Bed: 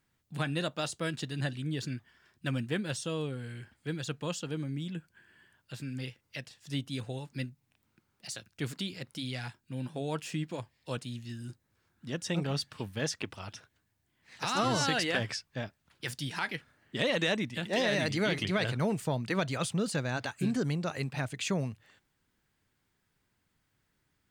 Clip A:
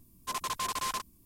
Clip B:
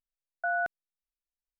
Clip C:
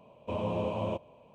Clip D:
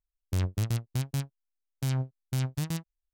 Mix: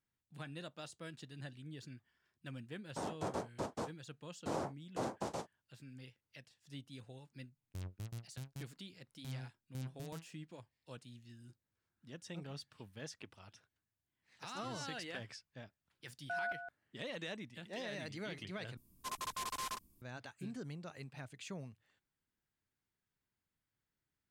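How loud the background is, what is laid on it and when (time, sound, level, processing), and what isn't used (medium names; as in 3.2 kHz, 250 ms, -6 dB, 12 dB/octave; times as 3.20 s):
bed -15 dB
2.63 s: add D -10 dB + noise-vocoded speech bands 2
7.42 s: add D -17 dB
15.86 s: add B -10 dB + delay 164 ms -9 dB
18.77 s: replace with A -8 dB
not used: C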